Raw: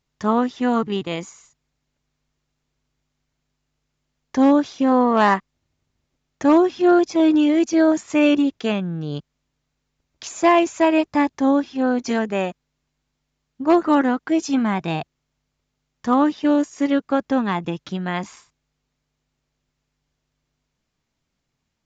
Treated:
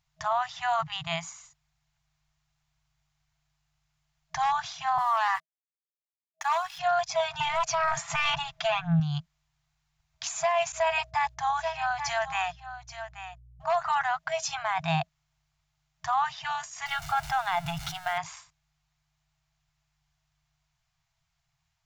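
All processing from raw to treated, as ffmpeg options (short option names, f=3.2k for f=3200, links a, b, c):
-filter_complex "[0:a]asettb=1/sr,asplit=3[a][b][c];[a]atrim=end=4.984[d];[b]atrim=start=4.98:end=6.79,asetpts=PTS-STARTPTS,afade=t=in:d=0.004:c=qsin,afade=t=out:st=1.806:d=0.004:c=qsin,highpass=f=820:w=0.5412,highpass=f=820:w=1.3066,aecho=1:1:3.5:0.3,atrim=end_sample=79821,aeval=exprs='sgn(val(0))*max(abs(val(0))-0.00422,0)':c=same[e];[c]atrim=start=6.786[f];[d][e]acrossfade=d=0.004:c1=hsin:c2=qsin[g];[g][f]acrossfade=d=0.004:c1=qsin:c2=hsin,asettb=1/sr,asplit=3[h][i][j];[h]atrim=end=7.404[k];[i]atrim=start=7.4:end=9,asetpts=PTS-STARTPTS,afade=t=in:d=0.004:c=qsin,afade=t=out:st=1.596:d=0.004:c=qsin,highshelf=f=2.6k:g=-9,aecho=1:1:5.9:0.65,atrim=end_sample=70560,aeval=exprs='0.562*sin(PI/2*1.58*val(0)/0.562)':c=same[l];[j]atrim=start=8.996[m];[k][l]acrossfade=d=0.004:c1=hsin:c2=qsin[n];[n][m]acrossfade=d=0.004:c1=qsin:c2=hsin,asettb=1/sr,asplit=3[o][p][q];[o]atrim=end=10.724[r];[p]atrim=start=10.72:end=13.64,asetpts=PTS-STARTPTS,afade=t=in:d=0.004:c=qsin,afade=t=out:st=2.916:d=0.004:c=qsin,agate=range=-33dB:threshold=-40dB:ratio=3:release=100:detection=peak,aeval=exprs='val(0)+0.00224*(sin(2*PI*60*n/s)+sin(2*PI*2*60*n/s)/2+sin(2*PI*3*60*n/s)/3+sin(2*PI*4*60*n/s)/4+sin(2*PI*5*60*n/s)/5)':c=same,aecho=1:1:832:0.251,atrim=end_sample=128772[s];[q]atrim=start=13.636[t];[r][s]acrossfade=d=0.004:c1=hsin:c2=qsin[u];[u][t]acrossfade=d=0.004:c1=qsin:c2=hsin,asettb=1/sr,asplit=3[v][w][x];[v]atrim=end=16.864[y];[w]atrim=start=16.86:end=18.18,asetpts=PTS-STARTPTS,afade=t=in:d=0.004:c=qsin,afade=t=out:st=1.316:d=0.004:c=qsin,aeval=exprs='val(0)+0.5*0.0188*sgn(val(0))':c=same,aecho=1:1:1.4:0.46,atrim=end_sample=58212[z];[x]atrim=start=18.176[aa];[y][z]acrossfade=d=0.004:c1=hsin:c2=qsin[ab];[ab][aa]acrossfade=d=0.004:c1=qsin:c2=hsin,afftfilt=real='re*(1-between(b*sr/4096,170,640))':imag='im*(1-between(b*sr/4096,170,640))':win_size=4096:overlap=0.75,alimiter=limit=-17.5dB:level=0:latency=1:release=16"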